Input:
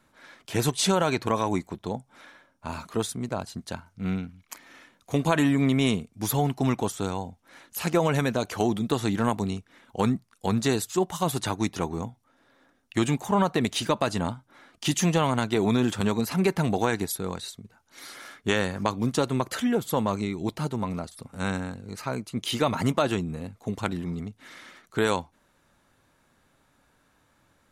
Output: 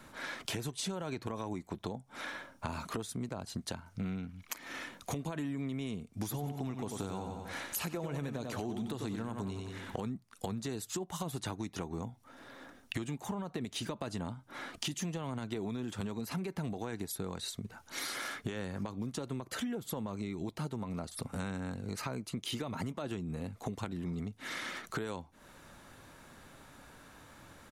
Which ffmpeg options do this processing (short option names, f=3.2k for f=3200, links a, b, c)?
-filter_complex "[0:a]asplit=3[a][b][c];[a]afade=t=out:st=6.29:d=0.02[d];[b]aecho=1:1:92|184|276|368:0.398|0.151|0.0575|0.0218,afade=t=in:st=6.29:d=0.02,afade=t=out:st=9.98:d=0.02[e];[c]afade=t=in:st=9.98:d=0.02[f];[d][e][f]amix=inputs=3:normalize=0,acrossover=split=450[g][h];[h]acompressor=threshold=-37dB:ratio=1.5[i];[g][i]amix=inputs=2:normalize=0,alimiter=limit=-23.5dB:level=0:latency=1:release=385,acompressor=threshold=-46dB:ratio=6,volume=10dB"